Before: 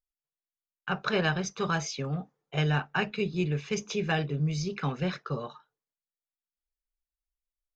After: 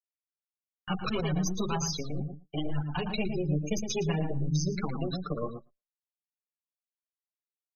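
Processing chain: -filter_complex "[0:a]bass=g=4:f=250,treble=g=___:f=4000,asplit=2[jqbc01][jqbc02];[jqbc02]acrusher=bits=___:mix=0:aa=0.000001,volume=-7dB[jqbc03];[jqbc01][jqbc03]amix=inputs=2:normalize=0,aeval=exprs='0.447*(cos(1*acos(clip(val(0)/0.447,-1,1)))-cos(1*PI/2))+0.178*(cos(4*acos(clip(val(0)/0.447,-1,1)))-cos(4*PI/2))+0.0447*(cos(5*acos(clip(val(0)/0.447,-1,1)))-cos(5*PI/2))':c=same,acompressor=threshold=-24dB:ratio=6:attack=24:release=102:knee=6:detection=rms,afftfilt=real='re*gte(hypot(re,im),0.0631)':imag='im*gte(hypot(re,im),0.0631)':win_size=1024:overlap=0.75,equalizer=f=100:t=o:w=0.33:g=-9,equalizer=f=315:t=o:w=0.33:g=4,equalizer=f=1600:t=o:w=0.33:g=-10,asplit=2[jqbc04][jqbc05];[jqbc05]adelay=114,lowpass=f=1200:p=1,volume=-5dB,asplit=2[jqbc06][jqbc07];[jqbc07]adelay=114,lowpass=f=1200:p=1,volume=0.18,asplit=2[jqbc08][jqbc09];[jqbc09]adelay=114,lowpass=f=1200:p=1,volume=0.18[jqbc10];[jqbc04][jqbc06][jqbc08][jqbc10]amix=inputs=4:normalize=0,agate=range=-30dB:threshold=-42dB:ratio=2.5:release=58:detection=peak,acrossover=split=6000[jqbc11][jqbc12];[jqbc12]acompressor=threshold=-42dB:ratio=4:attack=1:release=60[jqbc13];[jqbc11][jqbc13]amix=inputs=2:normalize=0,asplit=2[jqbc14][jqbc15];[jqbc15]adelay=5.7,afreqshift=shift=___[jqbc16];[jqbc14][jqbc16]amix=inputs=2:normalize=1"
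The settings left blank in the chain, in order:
13, 5, 1.8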